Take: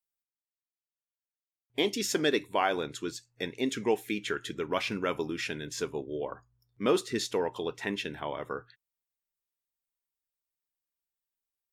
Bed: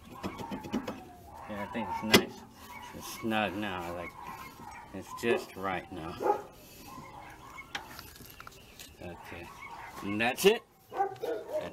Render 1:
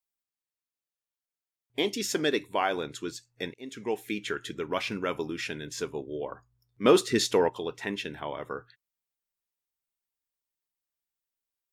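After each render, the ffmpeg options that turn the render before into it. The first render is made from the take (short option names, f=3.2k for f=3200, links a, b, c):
-filter_complex "[0:a]asplit=3[a][b][c];[a]afade=t=out:st=6.84:d=0.02[d];[b]acontrast=59,afade=t=in:st=6.84:d=0.02,afade=t=out:st=7.48:d=0.02[e];[c]afade=t=in:st=7.48:d=0.02[f];[d][e][f]amix=inputs=3:normalize=0,asplit=2[g][h];[g]atrim=end=3.54,asetpts=PTS-STARTPTS,afade=t=out:st=3.536:d=0.004:c=hsin:silence=0.0841395[i];[h]atrim=start=3.54,asetpts=PTS-STARTPTS,afade=t=in:d=0.58:silence=0.0841395[j];[i][j]concat=n=2:v=0:a=1"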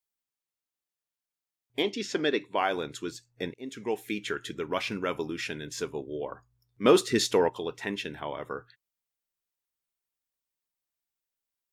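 -filter_complex "[0:a]asplit=3[a][b][c];[a]afade=t=out:st=1.82:d=0.02[d];[b]highpass=150,lowpass=4.4k,afade=t=in:st=1.82:d=0.02,afade=t=out:st=2.56:d=0.02[e];[c]afade=t=in:st=2.56:d=0.02[f];[d][e][f]amix=inputs=3:normalize=0,asettb=1/sr,asplit=3[g][h][i];[g]atrim=end=3.134[j];[h]atrim=start=3.13:end=3.71,asetpts=PTS-STARTPTS,afade=t=in:d=0.004:c=qsin,afade=t=out:st=0.576:d=0.004:c=qsin,tiltshelf=f=970:g=3[k];[i]atrim=start=3.706[l];[j][k]acrossfade=d=0.004:c1=hsin:c2=qsin[m];[m][l]acrossfade=d=0.004:c1=qsin:c2=hsin"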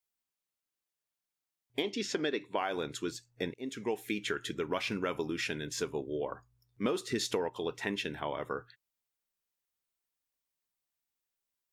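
-af "acompressor=threshold=-28dB:ratio=16"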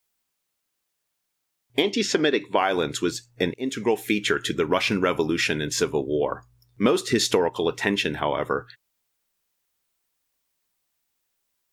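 -af "volume=11.5dB"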